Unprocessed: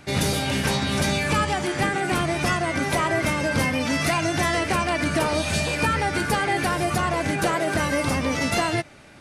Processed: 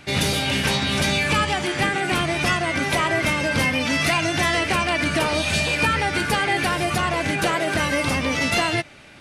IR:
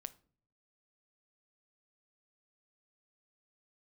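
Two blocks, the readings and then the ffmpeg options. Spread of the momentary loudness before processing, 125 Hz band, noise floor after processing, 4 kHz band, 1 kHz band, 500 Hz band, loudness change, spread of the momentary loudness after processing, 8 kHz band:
2 LU, 0.0 dB, -32 dBFS, +5.0 dB, +1.0 dB, +0.5 dB, +2.0 dB, 2 LU, +1.0 dB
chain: -af "equalizer=f=2900:t=o:w=1.3:g=6.5"

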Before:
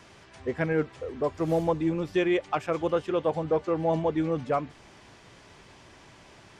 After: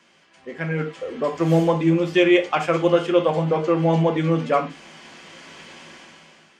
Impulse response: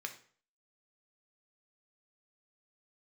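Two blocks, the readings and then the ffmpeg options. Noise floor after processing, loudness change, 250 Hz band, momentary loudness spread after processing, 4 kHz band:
-56 dBFS, +7.5 dB, +8.0 dB, 10 LU, +12.0 dB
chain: -filter_complex "[0:a]dynaudnorm=f=330:g=5:m=6.31[s0];[1:a]atrim=start_sample=2205,afade=t=out:st=0.19:d=0.01,atrim=end_sample=8820,asetrate=57330,aresample=44100[s1];[s0][s1]afir=irnorm=-1:irlink=0"

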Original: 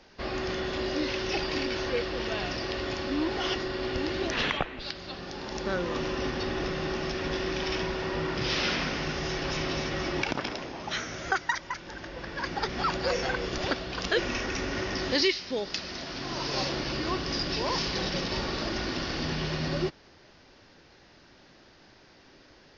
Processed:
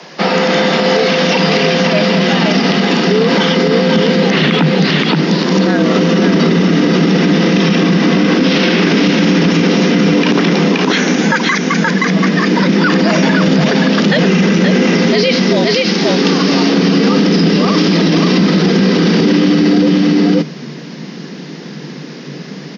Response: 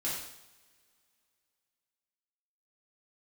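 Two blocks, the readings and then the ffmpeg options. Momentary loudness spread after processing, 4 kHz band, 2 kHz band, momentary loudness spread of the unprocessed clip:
3 LU, +15.5 dB, +16.5 dB, 6 LU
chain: -filter_complex "[0:a]afreqshift=140,acrossover=split=4300[s0][s1];[s1]acompressor=threshold=0.00562:ratio=4:attack=1:release=60[s2];[s0][s2]amix=inputs=2:normalize=0,asubboost=boost=10:cutoff=210,aecho=1:1:524:0.562,alimiter=level_in=15:limit=0.891:release=50:level=0:latency=1,volume=0.794"

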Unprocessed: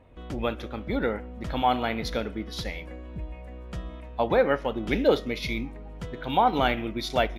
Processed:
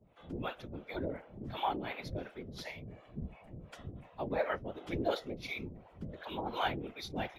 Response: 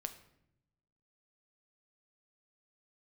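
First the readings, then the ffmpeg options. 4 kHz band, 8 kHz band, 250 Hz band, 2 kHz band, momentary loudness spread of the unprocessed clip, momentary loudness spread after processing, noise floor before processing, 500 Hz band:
-10.5 dB, no reading, -11.5 dB, -10.0 dB, 16 LU, 13 LU, -41 dBFS, -12.5 dB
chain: -filter_complex "[0:a]afreqshift=59,acrossover=split=520[s0][s1];[s0]aeval=exprs='val(0)*(1-1/2+1/2*cos(2*PI*2.8*n/s))':c=same[s2];[s1]aeval=exprs='val(0)*(1-1/2-1/2*cos(2*PI*2.8*n/s))':c=same[s3];[s2][s3]amix=inputs=2:normalize=0,afftfilt=real='hypot(re,im)*cos(2*PI*random(0))':imag='hypot(re,im)*sin(2*PI*random(1))':win_size=512:overlap=0.75"

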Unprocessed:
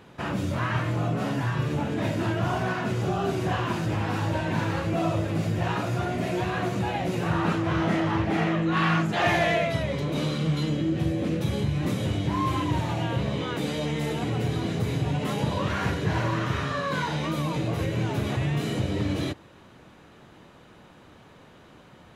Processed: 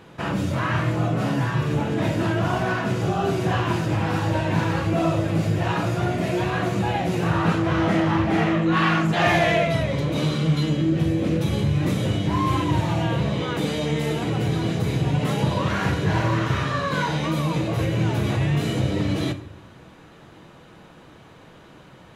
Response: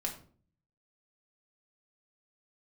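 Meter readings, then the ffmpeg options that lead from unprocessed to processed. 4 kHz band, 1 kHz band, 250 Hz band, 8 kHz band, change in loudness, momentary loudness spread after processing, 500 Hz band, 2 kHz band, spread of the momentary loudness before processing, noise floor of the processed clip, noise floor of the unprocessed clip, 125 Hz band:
+3.5 dB, +3.5 dB, +4.5 dB, +3.5 dB, +4.0 dB, 4 LU, +4.0 dB, +3.5 dB, 4 LU, -48 dBFS, -52 dBFS, +4.5 dB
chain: -filter_complex "[0:a]asplit=2[s0][s1];[1:a]atrim=start_sample=2205,asetrate=28224,aresample=44100[s2];[s1][s2]afir=irnorm=-1:irlink=0,volume=0.398[s3];[s0][s3]amix=inputs=2:normalize=0"

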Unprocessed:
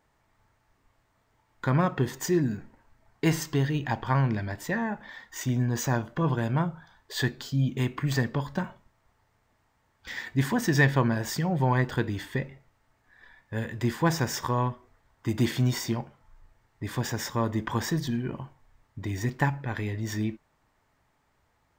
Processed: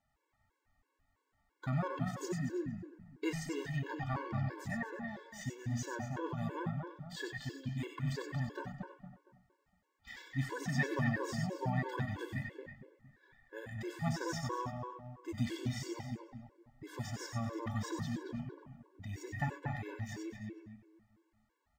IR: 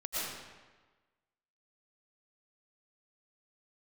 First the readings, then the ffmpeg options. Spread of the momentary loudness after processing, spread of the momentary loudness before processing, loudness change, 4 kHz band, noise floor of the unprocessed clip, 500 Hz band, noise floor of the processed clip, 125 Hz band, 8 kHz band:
14 LU, 11 LU, -11.0 dB, -12.0 dB, -70 dBFS, -10.5 dB, -82 dBFS, -11.0 dB, -12.5 dB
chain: -filter_complex "[0:a]asplit=2[s0][s1];[s1]adelay=231,lowpass=f=1800:p=1,volume=0.668,asplit=2[s2][s3];[s3]adelay=231,lowpass=f=1800:p=1,volume=0.38,asplit=2[s4][s5];[s5]adelay=231,lowpass=f=1800:p=1,volume=0.38,asplit=2[s6][s7];[s7]adelay=231,lowpass=f=1800:p=1,volume=0.38,asplit=2[s8][s9];[s9]adelay=231,lowpass=f=1800:p=1,volume=0.38[s10];[s0][s2][s4][s6][s8][s10]amix=inputs=6:normalize=0,acrossover=split=10000[s11][s12];[s12]acompressor=threshold=0.002:ratio=4:attack=1:release=60[s13];[s11][s13]amix=inputs=2:normalize=0[s14];[1:a]atrim=start_sample=2205,atrim=end_sample=4410[s15];[s14][s15]afir=irnorm=-1:irlink=0,afftfilt=real='re*gt(sin(2*PI*3*pts/sr)*(1-2*mod(floor(b*sr/1024/290),2)),0)':imag='im*gt(sin(2*PI*3*pts/sr)*(1-2*mod(floor(b*sr/1024/290),2)),0)':win_size=1024:overlap=0.75,volume=0.562"

